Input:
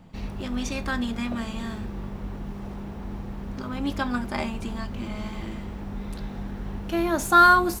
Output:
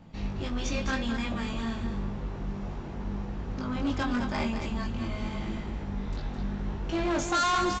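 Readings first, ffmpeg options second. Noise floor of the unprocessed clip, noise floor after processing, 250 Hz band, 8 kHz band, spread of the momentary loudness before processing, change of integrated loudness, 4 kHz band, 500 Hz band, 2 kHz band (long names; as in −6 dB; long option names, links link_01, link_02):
−37 dBFS, −38 dBFS, −2.0 dB, −2.0 dB, 18 LU, −5.5 dB, −0.5 dB, −3.5 dB, −8.5 dB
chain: -af "flanger=delay=18:depth=3.8:speed=0.88,aresample=16000,asoftclip=type=hard:threshold=-26.5dB,aresample=44100,aecho=1:1:213:0.422,volume=2dB"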